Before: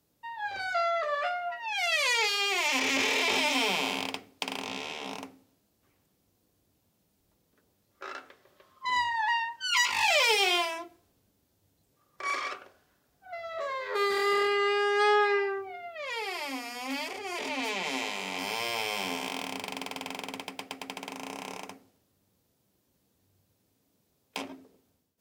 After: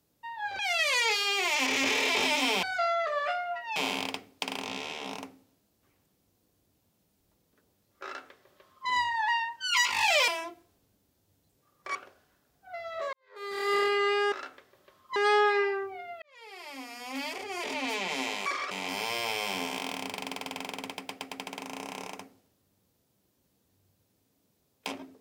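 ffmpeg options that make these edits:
ffmpeg -i in.wav -filter_complex "[0:a]asplit=12[link_01][link_02][link_03][link_04][link_05][link_06][link_07][link_08][link_09][link_10][link_11][link_12];[link_01]atrim=end=0.592[link_13];[link_02]atrim=start=1.718:end=3.762[link_14];[link_03]atrim=start=0.588:end=1.722[link_15];[link_04]atrim=start=3.758:end=10.282[link_16];[link_05]atrim=start=10.618:end=12.292[link_17];[link_06]atrim=start=12.538:end=13.72,asetpts=PTS-STARTPTS,afade=type=out:start_time=1.178:duration=0.004:curve=hsin[link_18];[link_07]atrim=start=13.72:end=14.912,asetpts=PTS-STARTPTS,afade=type=in:duration=0.62:curve=qua[link_19];[link_08]atrim=start=8.038:end=8.882[link_20];[link_09]atrim=start=14.908:end=15.97,asetpts=PTS-STARTPTS,afade=type=out:start_time=1.058:duration=0.004:curve=hsin[link_21];[link_10]atrim=start=15.97:end=18.212,asetpts=PTS-STARTPTS,afade=type=in:duration=1.17[link_22];[link_11]atrim=start=12.288:end=12.542[link_23];[link_12]atrim=start=18.208[link_24];[link_13][link_14]acrossfade=duration=0.004:curve1=hsin:curve2=hsin[link_25];[link_25][link_15]acrossfade=duration=0.004:curve1=hsin:curve2=hsin[link_26];[link_26][link_16]acrossfade=duration=0.004:curve1=hsin:curve2=hsin[link_27];[link_27][link_17]acrossfade=duration=0.004:curve1=hsin:curve2=hsin[link_28];[link_18][link_19]concat=n=2:v=0:a=1[link_29];[link_28][link_29]acrossfade=duration=0.004:curve1=hsin:curve2=hsin[link_30];[link_30][link_20]acrossfade=duration=0.004:curve1=hsin:curve2=hsin[link_31];[link_21][link_22]concat=n=2:v=0:a=1[link_32];[link_31][link_32]acrossfade=duration=0.004:curve1=hsin:curve2=hsin[link_33];[link_33][link_23]acrossfade=duration=0.004:curve1=hsin:curve2=hsin[link_34];[link_34][link_24]acrossfade=duration=0.004:curve1=hsin:curve2=hsin" out.wav

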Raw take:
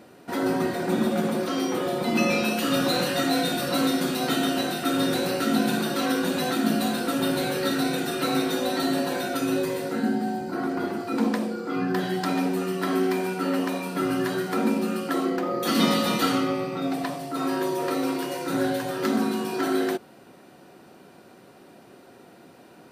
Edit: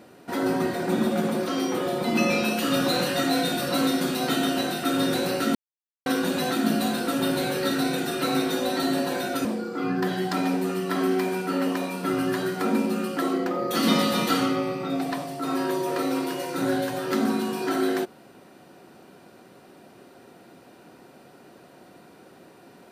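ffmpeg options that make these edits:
ffmpeg -i in.wav -filter_complex "[0:a]asplit=4[link_01][link_02][link_03][link_04];[link_01]atrim=end=5.55,asetpts=PTS-STARTPTS,afade=type=out:start_time=5.546:duration=0.004:curve=hsin[link_05];[link_02]atrim=start=5.55:end=6.06,asetpts=PTS-STARTPTS,volume=0[link_06];[link_03]atrim=start=6.06:end=9.452,asetpts=PTS-STARTPTS,afade=type=in:duration=0.004:curve=hsin[link_07];[link_04]atrim=start=11.368[link_08];[link_05][link_06][link_07]concat=n=3:v=0:a=1[link_09];[link_09][link_08]acrossfade=duration=0.004:curve1=hsin:curve2=hsin" out.wav

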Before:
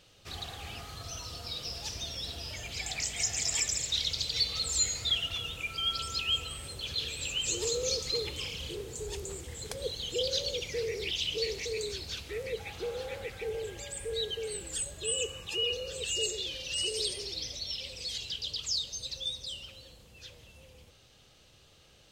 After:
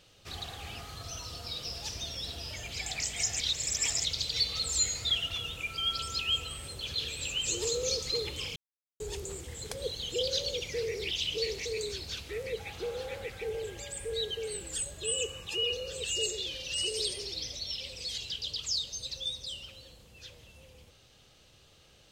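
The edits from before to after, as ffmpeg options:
ffmpeg -i in.wav -filter_complex "[0:a]asplit=5[link_01][link_02][link_03][link_04][link_05];[link_01]atrim=end=3.402[link_06];[link_02]atrim=start=3.398:end=4.052,asetpts=PTS-STARTPTS,areverse[link_07];[link_03]atrim=start=4.048:end=8.56,asetpts=PTS-STARTPTS,afade=type=out:start_time=4.508:duration=0.004:curve=hsin[link_08];[link_04]atrim=start=8.56:end=9,asetpts=PTS-STARTPTS,volume=0[link_09];[link_05]atrim=start=9,asetpts=PTS-STARTPTS,afade=type=in:duration=0.004:curve=hsin[link_10];[link_06][link_07]acrossfade=duration=0.004:curve1=hsin:curve2=hsin[link_11];[link_08][link_09][link_10]concat=n=3:v=0:a=1[link_12];[link_11][link_12]acrossfade=duration=0.004:curve1=hsin:curve2=hsin" out.wav

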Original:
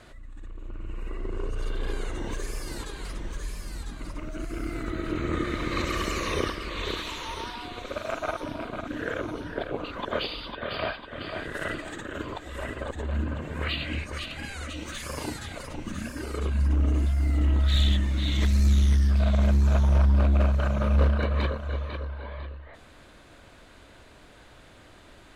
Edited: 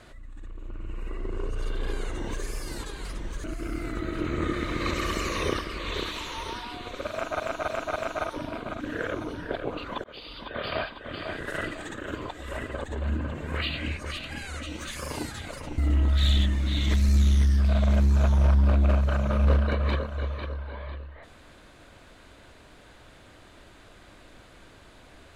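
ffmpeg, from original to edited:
ffmpeg -i in.wav -filter_complex "[0:a]asplit=7[link_01][link_02][link_03][link_04][link_05][link_06][link_07];[link_01]atrim=end=3.442[link_08];[link_02]atrim=start=4.348:end=8.312[link_09];[link_03]atrim=start=8.028:end=8.312[link_10];[link_04]atrim=start=8.028:end=8.312[link_11];[link_05]atrim=start=8.028:end=10.11,asetpts=PTS-STARTPTS,afade=type=out:start_time=2.078:duration=0.004:curve=hsin[link_12];[link_06]atrim=start=10.11:end=15.852,asetpts=PTS-STARTPTS,afade=type=in:duration=0.5[link_13];[link_07]atrim=start=17.288[link_14];[link_08][link_09]acrossfade=duration=0.004:curve1=hsin:curve2=hsin[link_15];[link_15][link_10]acrossfade=duration=0.004:curve1=hsin:curve2=hsin[link_16];[link_16][link_11]acrossfade=duration=0.004:curve1=hsin:curve2=hsin[link_17];[link_12][link_13]concat=n=2:v=0:a=1[link_18];[link_17][link_18]acrossfade=duration=0.004:curve1=hsin:curve2=hsin[link_19];[link_19][link_14]acrossfade=duration=0.004:curve1=hsin:curve2=hsin" out.wav

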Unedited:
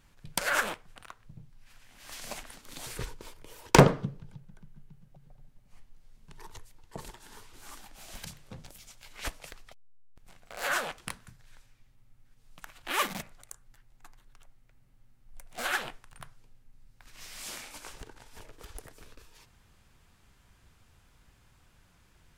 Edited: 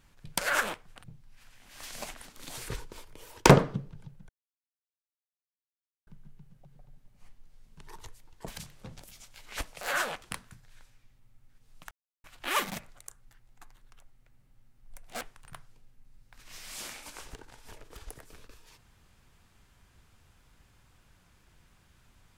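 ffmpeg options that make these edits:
ffmpeg -i in.wav -filter_complex "[0:a]asplit=7[link_01][link_02][link_03][link_04][link_05][link_06][link_07];[link_01]atrim=end=1.042[link_08];[link_02]atrim=start=1.328:end=4.58,asetpts=PTS-STARTPTS,afade=type=out:start_time=3.248:duration=0.004:curve=hsin,apad=pad_dur=1.78[link_09];[link_03]atrim=start=4.58:end=6.992,asetpts=PTS-STARTPTS,afade=type=in:duration=0.004:curve=hsin[link_10];[link_04]atrim=start=8.148:end=9.482[link_11];[link_05]atrim=start=10.568:end=12.67,asetpts=PTS-STARTPTS,afade=type=out:start_time=2.098:duration=0.004:curve=hsin,apad=pad_dur=0.33[link_12];[link_06]atrim=start=12.67:end=15.642,asetpts=PTS-STARTPTS,afade=type=in:duration=0.004:curve=hsin[link_13];[link_07]atrim=start=15.888[link_14];[link_09][link_10]concat=n=2:v=0:a=1[link_15];[link_08][link_15]acrossfade=duration=0.004:curve1=hsin:curve2=hsin[link_16];[link_16][link_11]acrossfade=duration=0.004:curve1=hsin:curve2=hsin[link_17];[link_12][link_13]concat=n=2:v=0:a=1[link_18];[link_17][link_18]acrossfade=duration=0.004:curve1=hsin:curve2=hsin[link_19];[link_19][link_14]acrossfade=duration=0.004:curve1=hsin:curve2=hsin" out.wav

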